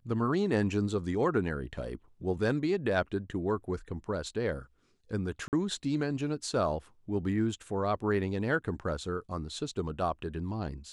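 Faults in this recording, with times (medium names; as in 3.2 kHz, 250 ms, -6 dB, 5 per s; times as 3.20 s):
5.48–5.53 s: dropout 48 ms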